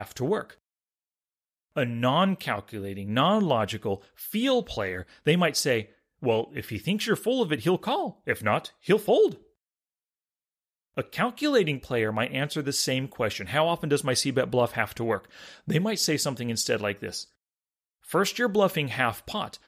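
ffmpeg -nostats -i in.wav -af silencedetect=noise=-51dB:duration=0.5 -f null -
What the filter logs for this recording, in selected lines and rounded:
silence_start: 0.55
silence_end: 1.76 | silence_duration: 1.21
silence_start: 9.42
silence_end: 10.97 | silence_duration: 1.54
silence_start: 17.28
silence_end: 18.04 | silence_duration: 0.76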